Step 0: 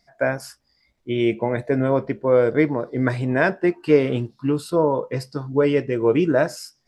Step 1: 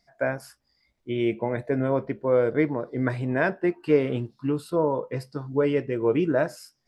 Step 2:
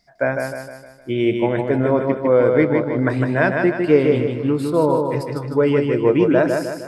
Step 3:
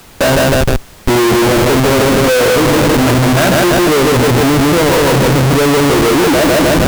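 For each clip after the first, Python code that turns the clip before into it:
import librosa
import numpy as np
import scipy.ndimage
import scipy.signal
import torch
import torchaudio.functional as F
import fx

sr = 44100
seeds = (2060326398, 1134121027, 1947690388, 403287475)

y1 = fx.dynamic_eq(x, sr, hz=6100.0, q=0.94, threshold_db=-49.0, ratio=4.0, max_db=-6)
y1 = y1 * librosa.db_to_amplitude(-4.5)
y2 = fx.echo_feedback(y1, sr, ms=154, feedback_pct=47, wet_db=-4.5)
y2 = y2 * librosa.db_to_amplitude(6.0)
y3 = fx.air_absorb(y2, sr, metres=240.0)
y3 = fx.schmitt(y3, sr, flips_db=-31.5)
y3 = fx.dmg_noise_colour(y3, sr, seeds[0], colour='pink', level_db=-47.0)
y3 = y3 * librosa.db_to_amplitude(9.0)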